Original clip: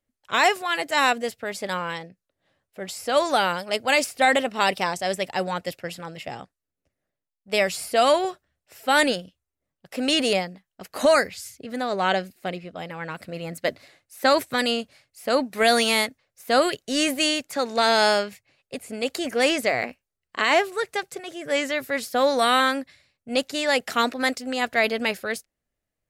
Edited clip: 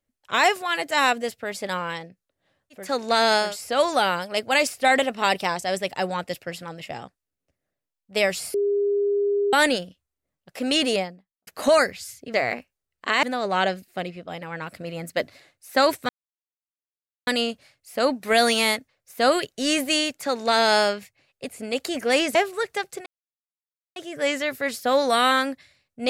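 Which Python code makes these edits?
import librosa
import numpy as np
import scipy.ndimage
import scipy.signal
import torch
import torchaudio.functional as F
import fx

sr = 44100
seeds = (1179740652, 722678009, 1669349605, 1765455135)

y = fx.studio_fade_out(x, sr, start_s=10.19, length_s=0.65)
y = fx.edit(y, sr, fx.bleep(start_s=7.91, length_s=0.99, hz=405.0, db=-19.0),
    fx.insert_silence(at_s=14.57, length_s=1.18),
    fx.duplicate(start_s=17.49, length_s=0.63, to_s=2.82, crossfade_s=0.24),
    fx.move(start_s=19.65, length_s=0.89, to_s=11.71),
    fx.insert_silence(at_s=21.25, length_s=0.9), tone=tone)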